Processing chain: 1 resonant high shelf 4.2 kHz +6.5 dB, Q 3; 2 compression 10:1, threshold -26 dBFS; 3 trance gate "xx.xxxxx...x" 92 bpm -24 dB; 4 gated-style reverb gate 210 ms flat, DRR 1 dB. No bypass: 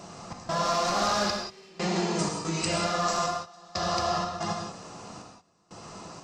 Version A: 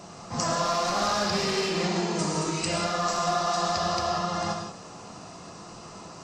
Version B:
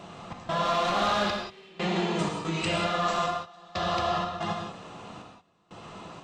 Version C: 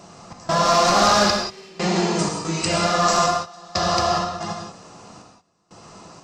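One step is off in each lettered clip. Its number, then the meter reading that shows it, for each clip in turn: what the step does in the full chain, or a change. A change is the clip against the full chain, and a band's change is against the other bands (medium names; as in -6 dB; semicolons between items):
3, crest factor change -1.5 dB; 1, 8 kHz band -9.5 dB; 2, mean gain reduction 5.0 dB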